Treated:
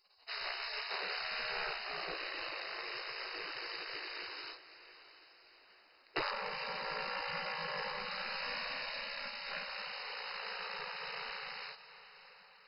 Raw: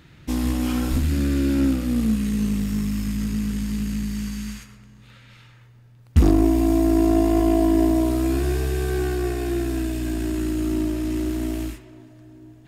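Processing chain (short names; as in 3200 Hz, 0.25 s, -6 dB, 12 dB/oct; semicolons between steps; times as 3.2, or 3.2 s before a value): spectral gate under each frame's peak -30 dB weak; diffused feedback echo 0.697 s, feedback 48%, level -15 dB; gain +2 dB; MP2 32 kbps 48000 Hz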